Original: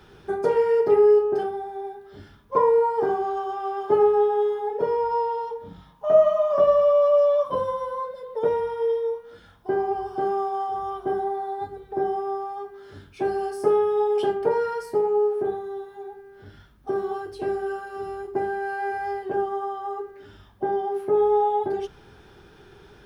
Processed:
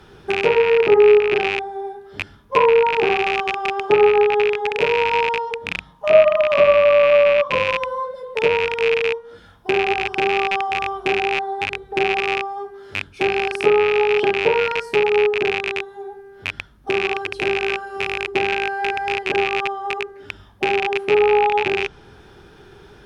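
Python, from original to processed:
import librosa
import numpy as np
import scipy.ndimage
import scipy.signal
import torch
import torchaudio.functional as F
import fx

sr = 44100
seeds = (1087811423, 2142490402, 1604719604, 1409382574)

y = fx.rattle_buzz(x, sr, strikes_db=-43.0, level_db=-13.0)
y = fx.env_lowpass_down(y, sr, base_hz=2700.0, full_db=-15.5)
y = y * 10.0 ** (4.5 / 20.0)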